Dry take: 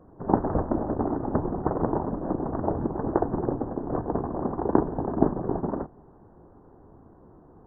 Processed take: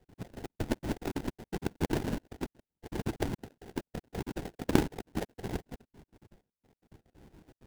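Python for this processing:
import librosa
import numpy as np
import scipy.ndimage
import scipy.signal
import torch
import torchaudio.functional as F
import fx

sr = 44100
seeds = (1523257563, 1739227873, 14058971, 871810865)

y = fx.spec_dropout(x, sr, seeds[0], share_pct=68)
y = fx.sample_hold(y, sr, seeds[1], rate_hz=1200.0, jitter_pct=20)
y = fx.low_shelf(y, sr, hz=320.0, db=7.5)
y = y * librosa.db_to_amplitude(-7.5)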